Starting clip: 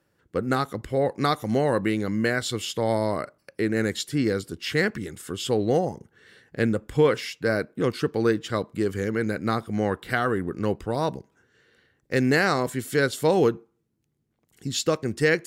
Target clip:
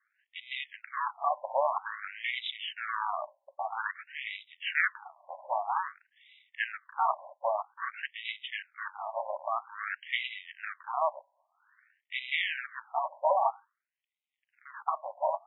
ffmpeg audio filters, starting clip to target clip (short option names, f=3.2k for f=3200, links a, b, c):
-filter_complex "[0:a]lowpass=7.3k,asplit=2[a][b];[b]acrusher=samples=39:mix=1:aa=0.000001,volume=-7.5dB[c];[a][c]amix=inputs=2:normalize=0,aeval=exprs='max(val(0),0)':c=same,afftfilt=real='re*between(b*sr/1024,740*pow(2800/740,0.5+0.5*sin(2*PI*0.51*pts/sr))/1.41,740*pow(2800/740,0.5+0.5*sin(2*PI*0.51*pts/sr))*1.41)':imag='im*between(b*sr/1024,740*pow(2800/740,0.5+0.5*sin(2*PI*0.51*pts/sr))/1.41,740*pow(2800/740,0.5+0.5*sin(2*PI*0.51*pts/sr))*1.41)':win_size=1024:overlap=0.75,volume=4dB"